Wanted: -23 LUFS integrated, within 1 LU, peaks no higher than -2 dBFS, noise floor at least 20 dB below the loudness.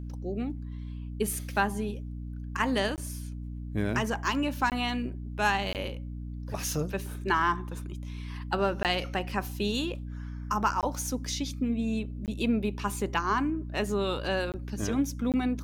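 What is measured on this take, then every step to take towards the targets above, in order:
dropouts 8; longest dropout 18 ms; hum 60 Hz; highest harmonic 300 Hz; hum level -35 dBFS; loudness -31.0 LUFS; peak level -12.5 dBFS; loudness target -23.0 LUFS
-> interpolate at 2.96/4.70/5.73/8.83/10.81/12.26/14.52/15.32 s, 18 ms; hum notches 60/120/180/240/300 Hz; trim +8 dB

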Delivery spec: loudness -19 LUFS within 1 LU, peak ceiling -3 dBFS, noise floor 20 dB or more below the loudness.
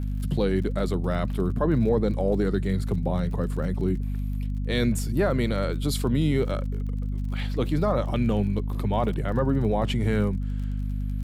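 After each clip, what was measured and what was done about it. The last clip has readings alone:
tick rate 39 per s; hum 50 Hz; highest harmonic 250 Hz; hum level -25 dBFS; loudness -26.0 LUFS; peak level -11.5 dBFS; loudness target -19.0 LUFS
-> de-click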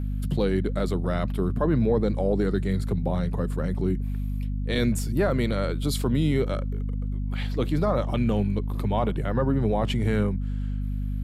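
tick rate 0 per s; hum 50 Hz; highest harmonic 250 Hz; hum level -25 dBFS
-> de-hum 50 Hz, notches 5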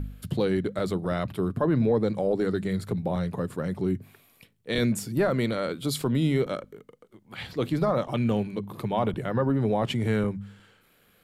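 hum not found; loudness -27.5 LUFS; peak level -13.0 dBFS; loudness target -19.0 LUFS
-> trim +8.5 dB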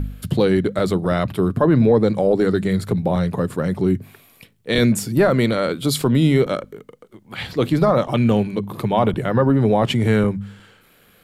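loudness -19.0 LUFS; peak level -4.5 dBFS; noise floor -54 dBFS

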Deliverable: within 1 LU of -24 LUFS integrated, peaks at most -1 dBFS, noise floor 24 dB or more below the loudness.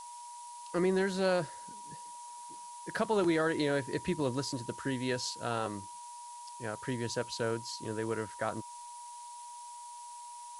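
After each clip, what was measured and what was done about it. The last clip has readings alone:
steady tone 960 Hz; tone level -45 dBFS; noise floor -47 dBFS; noise floor target -58 dBFS; loudness -33.5 LUFS; peak level -17.0 dBFS; loudness target -24.0 LUFS
-> band-stop 960 Hz, Q 30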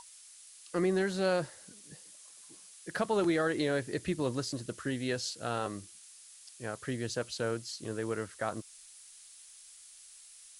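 steady tone not found; noise floor -55 dBFS; noise floor target -58 dBFS
-> noise print and reduce 6 dB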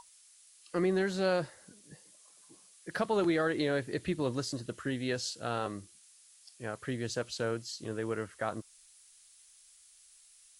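noise floor -60 dBFS; loudness -34.0 LUFS; peak level -17.5 dBFS; loudness target -24.0 LUFS
-> trim +10 dB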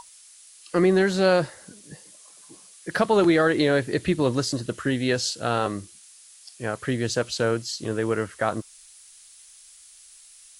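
loudness -24.0 LUFS; peak level -7.5 dBFS; noise floor -50 dBFS

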